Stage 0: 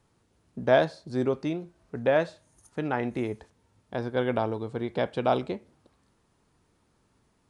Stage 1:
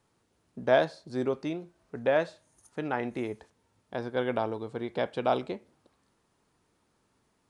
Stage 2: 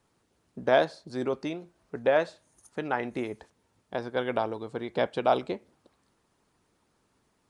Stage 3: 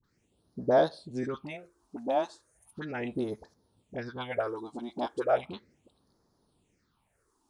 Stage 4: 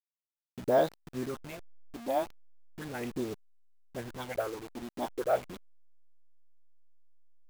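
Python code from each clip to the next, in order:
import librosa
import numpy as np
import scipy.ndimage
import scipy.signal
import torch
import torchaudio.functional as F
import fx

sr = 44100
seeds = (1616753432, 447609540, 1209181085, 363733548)

y1 = fx.low_shelf(x, sr, hz=160.0, db=-8.0)
y1 = F.gain(torch.from_numpy(y1), -1.5).numpy()
y2 = fx.hpss(y1, sr, part='percussive', gain_db=6)
y2 = F.gain(torch.from_numpy(y2), -2.5).numpy()
y3 = fx.dispersion(y2, sr, late='highs', ms=40.0, hz=800.0)
y3 = fx.phaser_stages(y3, sr, stages=6, low_hz=120.0, high_hz=2600.0, hz=0.36, feedback_pct=35)
y4 = fx.delta_hold(y3, sr, step_db=-37.5)
y4 = F.gain(torch.from_numpy(y4), -2.0).numpy()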